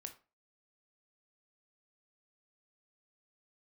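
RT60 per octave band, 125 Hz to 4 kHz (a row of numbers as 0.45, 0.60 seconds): 0.35, 0.35, 0.35, 0.30, 0.30, 0.25 seconds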